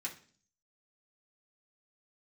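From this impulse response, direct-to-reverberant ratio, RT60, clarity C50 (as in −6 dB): −3.5 dB, 0.45 s, 11.5 dB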